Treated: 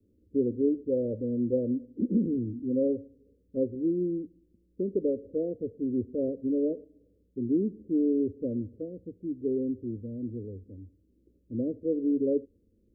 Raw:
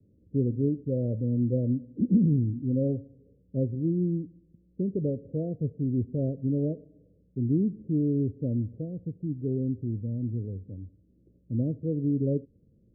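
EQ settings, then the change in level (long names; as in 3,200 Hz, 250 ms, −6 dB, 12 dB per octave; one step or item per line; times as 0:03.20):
dynamic equaliser 530 Hz, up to +7 dB, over −44 dBFS, Q 1.3
phaser with its sweep stopped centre 350 Hz, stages 4
0.0 dB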